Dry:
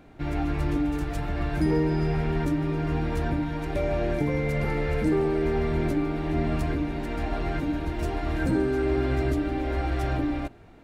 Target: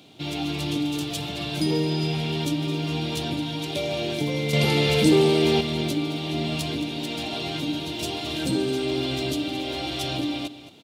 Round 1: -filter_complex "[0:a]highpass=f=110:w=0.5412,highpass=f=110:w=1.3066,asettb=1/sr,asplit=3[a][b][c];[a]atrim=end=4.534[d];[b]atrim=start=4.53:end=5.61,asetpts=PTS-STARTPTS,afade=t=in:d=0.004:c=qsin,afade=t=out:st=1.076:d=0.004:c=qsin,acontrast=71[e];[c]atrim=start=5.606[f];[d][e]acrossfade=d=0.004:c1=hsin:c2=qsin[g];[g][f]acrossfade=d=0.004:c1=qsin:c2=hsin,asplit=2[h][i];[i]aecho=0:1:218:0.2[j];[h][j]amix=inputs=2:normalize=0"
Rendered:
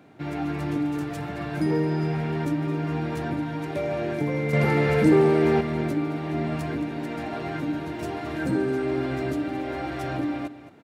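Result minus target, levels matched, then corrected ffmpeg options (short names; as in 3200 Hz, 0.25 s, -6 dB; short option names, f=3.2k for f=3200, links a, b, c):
4000 Hz band -16.0 dB
-filter_complex "[0:a]highpass=f=110:w=0.5412,highpass=f=110:w=1.3066,highshelf=f=2.4k:t=q:w=3:g=11.5,asettb=1/sr,asplit=3[a][b][c];[a]atrim=end=4.534[d];[b]atrim=start=4.53:end=5.61,asetpts=PTS-STARTPTS,afade=t=in:d=0.004:c=qsin,afade=t=out:st=1.076:d=0.004:c=qsin,acontrast=71[e];[c]atrim=start=5.606[f];[d][e]acrossfade=d=0.004:c1=hsin:c2=qsin[g];[g][f]acrossfade=d=0.004:c1=qsin:c2=hsin,asplit=2[h][i];[i]aecho=0:1:218:0.2[j];[h][j]amix=inputs=2:normalize=0"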